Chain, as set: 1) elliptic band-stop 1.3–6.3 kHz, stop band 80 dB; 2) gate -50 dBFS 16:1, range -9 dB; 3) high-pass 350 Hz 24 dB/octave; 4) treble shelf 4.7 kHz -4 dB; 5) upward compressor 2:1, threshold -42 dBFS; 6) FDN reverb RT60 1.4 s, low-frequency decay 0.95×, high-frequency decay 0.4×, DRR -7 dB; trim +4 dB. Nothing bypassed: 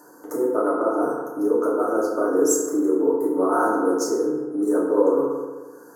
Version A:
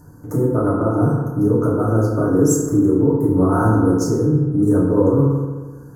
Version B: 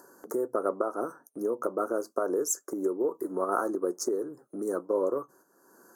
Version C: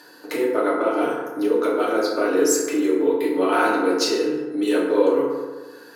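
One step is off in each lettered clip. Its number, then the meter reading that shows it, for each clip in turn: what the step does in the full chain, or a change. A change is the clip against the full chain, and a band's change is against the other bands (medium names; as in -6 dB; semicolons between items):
3, 250 Hz band +7.0 dB; 6, crest factor change +3.5 dB; 1, 4 kHz band +14.5 dB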